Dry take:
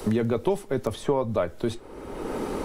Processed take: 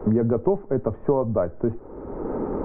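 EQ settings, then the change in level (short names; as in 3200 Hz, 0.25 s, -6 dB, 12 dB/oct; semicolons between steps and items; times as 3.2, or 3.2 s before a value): Gaussian blur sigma 6.9 samples; +4.0 dB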